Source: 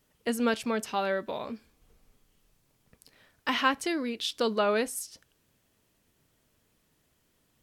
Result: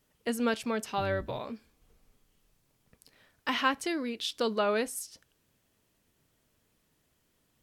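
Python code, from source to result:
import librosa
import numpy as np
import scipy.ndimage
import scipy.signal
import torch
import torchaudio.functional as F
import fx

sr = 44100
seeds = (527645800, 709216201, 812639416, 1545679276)

y = fx.octave_divider(x, sr, octaves=2, level_db=3.0, at=(0.97, 1.4))
y = y * librosa.db_to_amplitude(-2.0)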